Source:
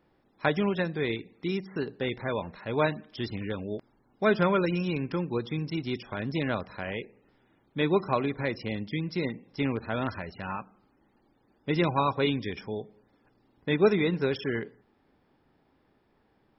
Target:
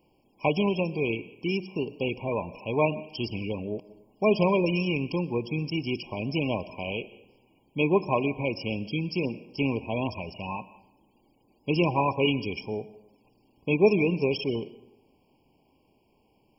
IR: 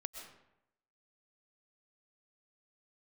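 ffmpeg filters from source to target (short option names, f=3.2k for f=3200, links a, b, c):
-filter_complex "[0:a]aexciter=amount=2.2:drive=3.4:freq=2.4k,asplit=2[a][b];[1:a]atrim=start_sample=2205,lowshelf=f=210:g=-6[c];[b][c]afir=irnorm=-1:irlink=0,volume=-7dB[d];[a][d]amix=inputs=2:normalize=0,afftfilt=real='re*eq(mod(floor(b*sr/1024/1100),2),0)':imag='im*eq(mod(floor(b*sr/1024/1100),2),0)':win_size=1024:overlap=0.75"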